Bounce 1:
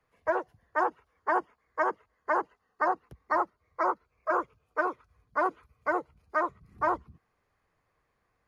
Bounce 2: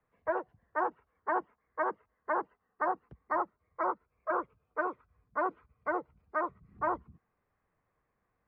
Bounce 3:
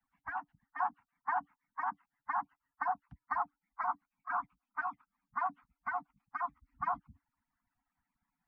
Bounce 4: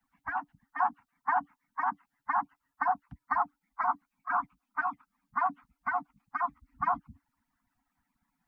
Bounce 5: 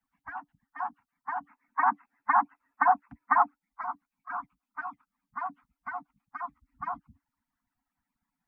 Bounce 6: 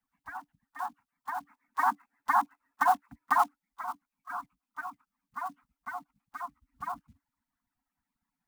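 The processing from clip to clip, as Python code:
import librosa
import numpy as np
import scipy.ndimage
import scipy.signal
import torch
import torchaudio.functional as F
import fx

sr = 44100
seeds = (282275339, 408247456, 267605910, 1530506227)

y1 = scipy.signal.sosfilt(scipy.signal.butter(2, 2100.0, 'lowpass', fs=sr, output='sos'), x)
y1 = fx.peak_eq(y1, sr, hz=200.0, db=4.0, octaves=0.79)
y1 = y1 * librosa.db_to_amplitude(-4.0)
y2 = fx.hpss_only(y1, sr, part='percussive')
y2 = scipy.signal.sosfilt(scipy.signal.cheby1(5, 1.0, [290.0, 710.0], 'bandstop', fs=sr, output='sos'), y2)
y3 = fx.peak_eq(y2, sr, hz=260.0, db=4.5, octaves=0.7)
y3 = y3 * librosa.db_to_amplitude(5.5)
y4 = fx.spec_box(y3, sr, start_s=1.47, length_s=2.08, low_hz=210.0, high_hz=2700.0, gain_db=12)
y4 = y4 * librosa.db_to_amplitude(-6.0)
y5 = fx.block_float(y4, sr, bits=5)
y5 = y5 * librosa.db_to_amplitude(-2.0)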